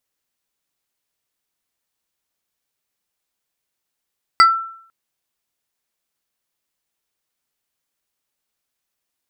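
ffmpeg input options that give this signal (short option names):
-f lavfi -i "aevalsrc='0.631*pow(10,-3*t/0.61)*sin(2*PI*1340*t+0.84*pow(10,-3*t/0.22)*sin(2*PI*2.49*1340*t))':d=0.5:s=44100"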